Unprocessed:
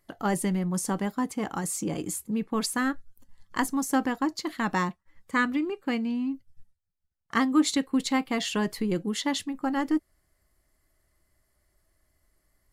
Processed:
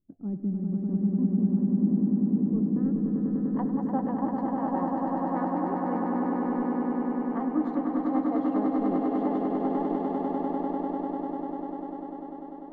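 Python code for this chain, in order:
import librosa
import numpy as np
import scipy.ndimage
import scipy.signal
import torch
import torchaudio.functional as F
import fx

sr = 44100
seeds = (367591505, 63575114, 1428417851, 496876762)

y = fx.filter_sweep_lowpass(x, sr, from_hz=250.0, to_hz=710.0, start_s=2.24, end_s=3.6, q=2.5)
y = fx.echo_swell(y, sr, ms=99, loudest=8, wet_db=-4.0)
y = F.gain(torch.from_numpy(y), -8.5).numpy()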